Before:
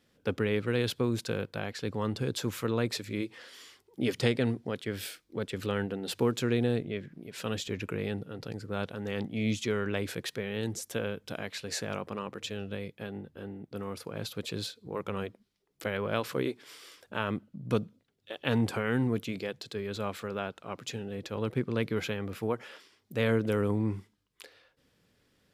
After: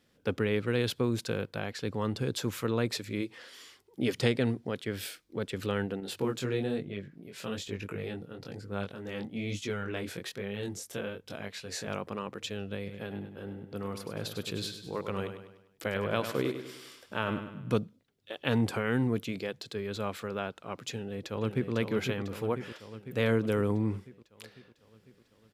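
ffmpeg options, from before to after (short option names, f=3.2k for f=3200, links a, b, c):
-filter_complex "[0:a]asettb=1/sr,asplit=3[a][b][c];[a]atrim=end=6.004[d];[b]atrim=start=6:end=11.87,asetpts=PTS-STARTPTS,afade=t=in:d=0.004:c=qsin,afade=t=out:st=5.866:d=0.004:c=qsin,flanger=delay=20:depth=3.5:speed=1.1[e];[c]atrim=start=11.866[f];[d][e]acrossfade=d=0.004:c1=hsin:c2=qsin[g];[g][f]acrossfade=d=0.004:c1=qsin:c2=hsin,asplit=3[h][i][j];[h]afade=t=out:st=12.86:d=0.02[k];[i]aecho=1:1:100|200|300|400|500:0.355|0.167|0.0784|0.0368|0.0173,afade=t=in:st=12.86:d=0.02,afade=t=out:st=17.77:d=0.02[l];[j]afade=t=in:st=17.77:d=0.02[m];[k][l][m]amix=inputs=3:normalize=0,asplit=2[n][o];[o]afade=t=in:st=20.91:d=0.01,afade=t=out:st=21.72:d=0.01,aecho=0:1:500|1000|1500|2000|2500|3000|3500|4000|4500|5000:0.501187|0.325772|0.211752|0.137639|0.0894651|0.0581523|0.037799|0.0245693|0.0159701|0.0103805[p];[n][p]amix=inputs=2:normalize=0"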